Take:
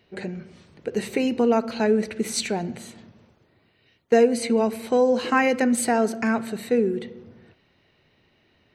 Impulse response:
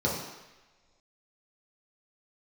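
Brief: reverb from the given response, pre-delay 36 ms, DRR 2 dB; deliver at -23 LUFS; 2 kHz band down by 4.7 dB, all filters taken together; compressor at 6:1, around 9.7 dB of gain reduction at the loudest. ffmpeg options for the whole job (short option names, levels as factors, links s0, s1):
-filter_complex "[0:a]equalizer=f=2000:t=o:g=-6,acompressor=threshold=0.0708:ratio=6,asplit=2[s0][s1];[1:a]atrim=start_sample=2205,adelay=36[s2];[s1][s2]afir=irnorm=-1:irlink=0,volume=0.224[s3];[s0][s3]amix=inputs=2:normalize=0,volume=1.19"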